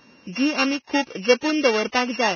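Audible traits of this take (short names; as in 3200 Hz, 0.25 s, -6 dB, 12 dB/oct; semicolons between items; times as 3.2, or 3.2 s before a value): a buzz of ramps at a fixed pitch in blocks of 16 samples; Vorbis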